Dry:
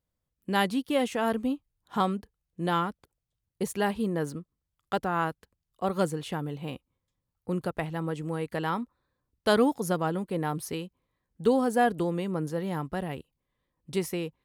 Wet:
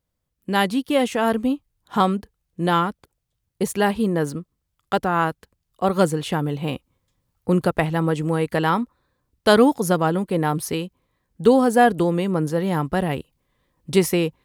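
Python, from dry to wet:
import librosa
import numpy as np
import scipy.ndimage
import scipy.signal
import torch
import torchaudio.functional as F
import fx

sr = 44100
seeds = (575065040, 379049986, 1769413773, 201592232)

y = fx.rider(x, sr, range_db=4, speed_s=2.0)
y = F.gain(torch.from_numpy(y), 8.0).numpy()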